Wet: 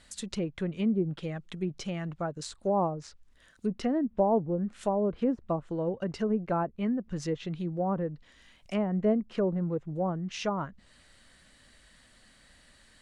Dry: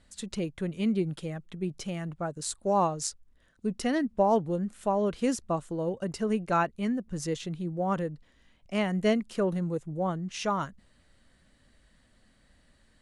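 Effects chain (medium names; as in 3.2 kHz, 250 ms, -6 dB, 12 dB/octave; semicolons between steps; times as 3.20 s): low-pass that closes with the level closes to 800 Hz, closed at -24 dBFS; tape noise reduction on one side only encoder only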